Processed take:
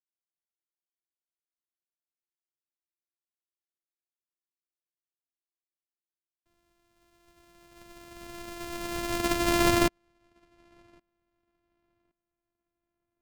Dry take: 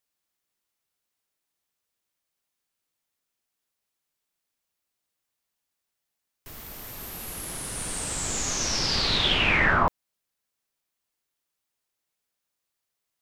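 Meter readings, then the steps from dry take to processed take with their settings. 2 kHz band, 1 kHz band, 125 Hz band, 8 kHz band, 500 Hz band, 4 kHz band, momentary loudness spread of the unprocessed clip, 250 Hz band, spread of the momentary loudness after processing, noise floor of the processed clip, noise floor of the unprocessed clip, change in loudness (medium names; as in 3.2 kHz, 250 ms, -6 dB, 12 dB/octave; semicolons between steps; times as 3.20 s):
-9.5 dB, -4.0 dB, -5.0 dB, -9.5 dB, +2.5 dB, -11.0 dB, 18 LU, +4.5 dB, 20 LU, under -85 dBFS, -83 dBFS, -3.0 dB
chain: sorted samples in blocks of 128 samples; filtered feedback delay 1117 ms, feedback 36%, low-pass 3.3 kHz, level -14 dB; upward expansion 2.5:1, over -40 dBFS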